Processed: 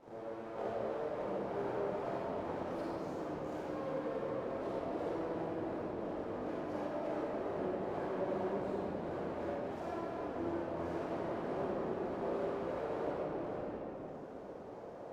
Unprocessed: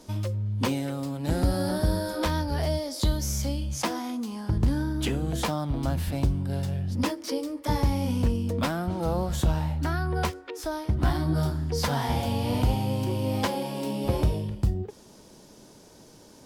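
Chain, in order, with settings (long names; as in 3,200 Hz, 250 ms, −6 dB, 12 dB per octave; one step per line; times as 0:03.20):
each half-wave held at its own peak
reverb reduction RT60 0.98 s
downward compressor 6 to 1, threshold −36 dBFS, peak gain reduction 18.5 dB
multi-voice chorus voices 6, 0.25 Hz, delay 29 ms, depth 4.9 ms
full-wave rectification
resonant band-pass 470 Hz, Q 1.3
wrong playback speed 44.1 kHz file played as 48 kHz
convolution reverb RT60 4.2 s, pre-delay 37 ms, DRR −9.5 dB
level +2 dB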